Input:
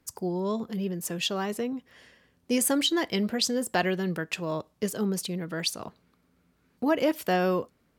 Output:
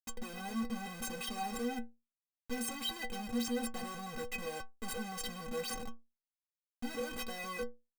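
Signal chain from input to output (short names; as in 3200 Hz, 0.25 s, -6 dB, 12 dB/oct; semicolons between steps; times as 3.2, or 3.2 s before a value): Schmitt trigger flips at -37.5 dBFS; metallic resonator 230 Hz, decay 0.26 s, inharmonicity 0.03; gain +3 dB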